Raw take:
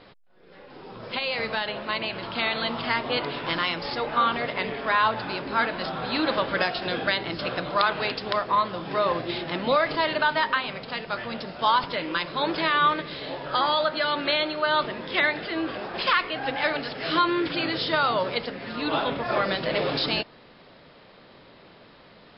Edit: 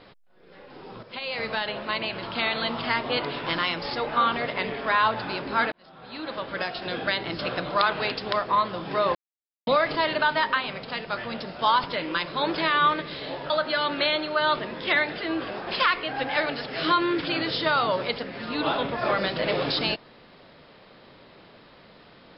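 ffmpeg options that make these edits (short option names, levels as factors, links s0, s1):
-filter_complex "[0:a]asplit=6[s0][s1][s2][s3][s4][s5];[s0]atrim=end=1.03,asetpts=PTS-STARTPTS,afade=t=out:st=1.026:d=0.004:c=hsin:silence=0.237137[s6];[s1]atrim=start=1.03:end=5.72,asetpts=PTS-STARTPTS,afade=t=in:d=0.68:c=qsin:silence=0.237137,afade=t=out:st=4.686:d=0.004:c=hsin[s7];[s2]atrim=start=5.72:end=9.15,asetpts=PTS-STARTPTS,afade=t=in:d=1.64,afade=t=out:st=3.426:d=0.004:c=hsin[s8];[s3]atrim=start=9.15:end=9.67,asetpts=PTS-STARTPTS,volume=0[s9];[s4]atrim=start=9.67:end=13.502,asetpts=PTS-STARTPTS,afade=t=in:d=0.004:c=hsin[s10];[s5]atrim=start=13.768[s11];[s6][s7][s8][s9][s10]concat=n=5:v=0:a=1[s12];[s12][s11]acrossfade=d=0.004:c1=hsin:c2=hsin"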